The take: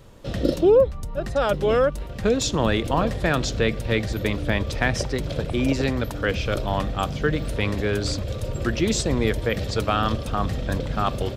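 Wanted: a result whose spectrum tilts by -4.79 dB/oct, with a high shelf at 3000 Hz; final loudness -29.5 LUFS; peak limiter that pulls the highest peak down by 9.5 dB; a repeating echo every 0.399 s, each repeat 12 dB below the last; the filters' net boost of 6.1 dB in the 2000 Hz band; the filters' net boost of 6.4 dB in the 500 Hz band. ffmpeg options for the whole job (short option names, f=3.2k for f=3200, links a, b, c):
-af "equalizer=f=500:t=o:g=7,equalizer=f=2k:t=o:g=6,highshelf=f=3k:g=3.5,alimiter=limit=-11dB:level=0:latency=1,aecho=1:1:399|798|1197:0.251|0.0628|0.0157,volume=-7dB"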